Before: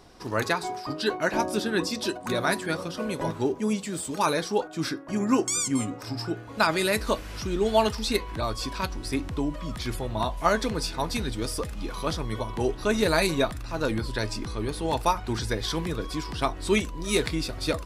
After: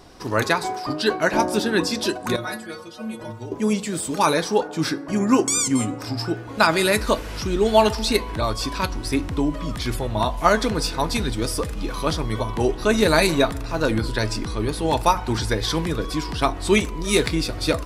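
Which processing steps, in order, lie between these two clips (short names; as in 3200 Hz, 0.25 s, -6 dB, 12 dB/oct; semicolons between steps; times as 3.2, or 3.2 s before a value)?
wow and flutter 25 cents; 2.36–3.52 metallic resonator 110 Hz, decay 0.31 s, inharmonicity 0.008; FDN reverb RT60 1.6 s, high-frequency decay 0.35×, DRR 17.5 dB; gain +5.5 dB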